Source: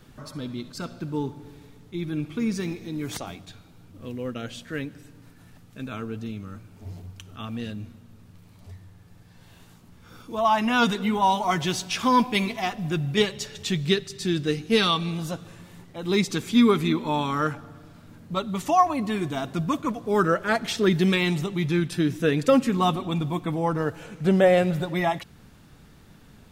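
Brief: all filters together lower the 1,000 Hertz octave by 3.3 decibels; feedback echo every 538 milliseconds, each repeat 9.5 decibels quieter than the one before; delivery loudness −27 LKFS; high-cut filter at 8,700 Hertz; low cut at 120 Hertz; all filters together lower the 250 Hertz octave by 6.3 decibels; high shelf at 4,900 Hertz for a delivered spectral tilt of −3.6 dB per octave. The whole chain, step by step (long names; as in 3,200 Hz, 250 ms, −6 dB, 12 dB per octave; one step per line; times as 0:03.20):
high-pass filter 120 Hz
low-pass filter 8,700 Hz
parametric band 250 Hz −8 dB
parametric band 1,000 Hz −3.5 dB
high-shelf EQ 4,900 Hz −4 dB
repeating echo 538 ms, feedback 33%, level −9.5 dB
level +1 dB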